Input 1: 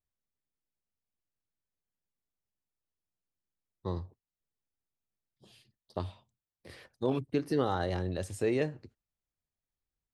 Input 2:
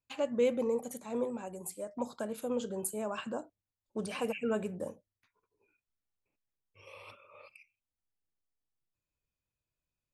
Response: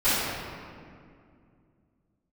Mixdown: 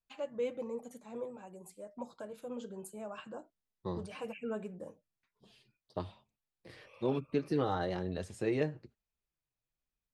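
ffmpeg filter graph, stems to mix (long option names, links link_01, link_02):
-filter_complex "[0:a]volume=1.5dB[link_01];[1:a]volume=-3.5dB[link_02];[link_01][link_02]amix=inputs=2:normalize=0,flanger=delay=4.4:depth=2.2:regen=-37:speed=1.1:shape=sinusoidal,highshelf=frequency=9000:gain=-12"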